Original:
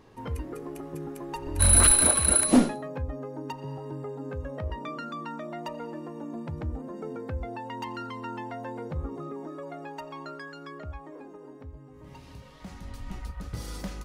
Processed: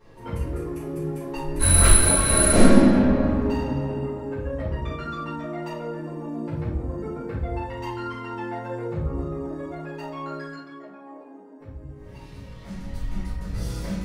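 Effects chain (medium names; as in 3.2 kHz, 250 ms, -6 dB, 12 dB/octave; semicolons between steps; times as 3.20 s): 2.15–3.52 s: reverb throw, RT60 2.9 s, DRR -2.5 dB; 10.54–11.60 s: rippled Chebyshev high-pass 190 Hz, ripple 9 dB; simulated room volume 160 m³, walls mixed, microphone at 4.3 m; trim -9.5 dB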